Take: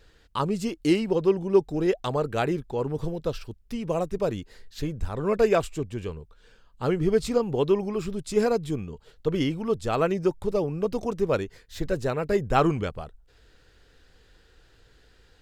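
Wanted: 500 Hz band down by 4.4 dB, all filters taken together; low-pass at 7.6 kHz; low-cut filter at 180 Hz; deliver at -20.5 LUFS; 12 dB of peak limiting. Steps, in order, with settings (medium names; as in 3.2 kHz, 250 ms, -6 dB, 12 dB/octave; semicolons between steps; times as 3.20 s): high-pass 180 Hz; low-pass 7.6 kHz; peaking EQ 500 Hz -5.5 dB; trim +11.5 dB; peak limiter -7.5 dBFS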